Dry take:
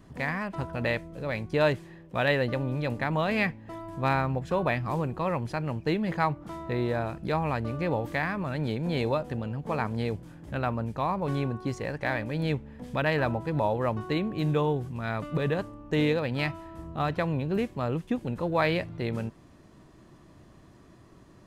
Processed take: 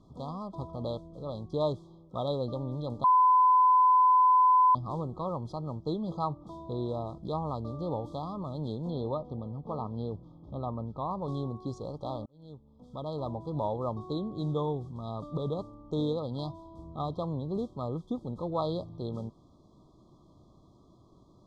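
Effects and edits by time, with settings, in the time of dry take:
3.04–4.75 s: bleep 1.01 kHz -13 dBFS
8.90–11.11 s: distance through air 200 m
12.26–13.57 s: fade in linear
whole clip: FFT band-reject 1.3–3.2 kHz; low-pass 5.7 kHz 12 dB/octave; trim -5 dB

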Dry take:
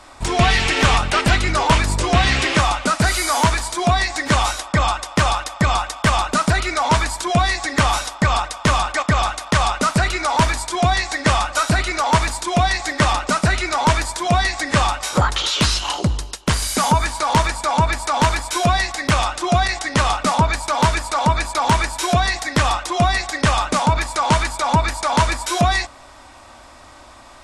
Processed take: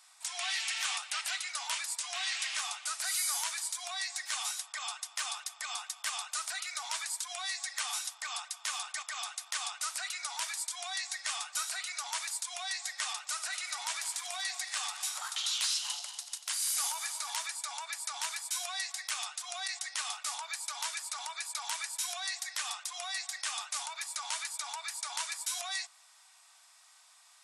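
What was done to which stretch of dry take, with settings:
13.26–17.35 s: backward echo that repeats 119 ms, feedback 64%, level -10.5 dB
whole clip: elliptic high-pass 700 Hz, stop band 60 dB; differentiator; trim -6.5 dB

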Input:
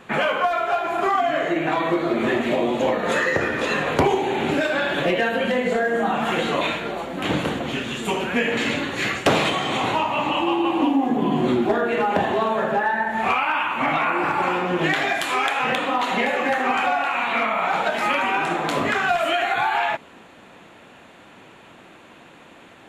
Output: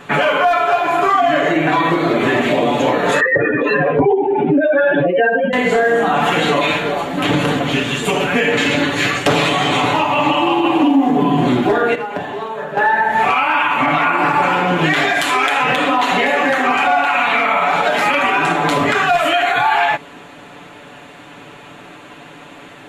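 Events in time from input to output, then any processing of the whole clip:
3.20–5.53 s: spectral contrast enhancement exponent 2.3
11.95–12.77 s: gain -11.5 dB
whole clip: comb 6.9 ms, depth 63%; peak limiter -13.5 dBFS; trim +7.5 dB

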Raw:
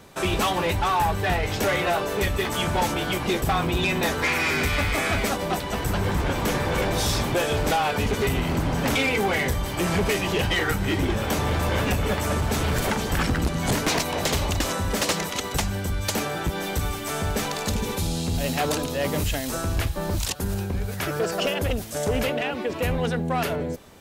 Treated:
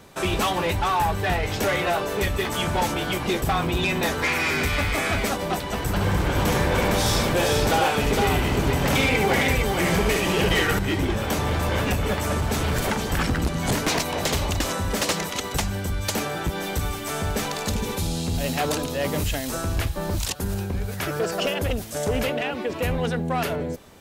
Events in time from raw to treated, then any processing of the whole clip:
5.89–10.79 s: multi-tap echo 70/459 ms -4/-3.5 dB

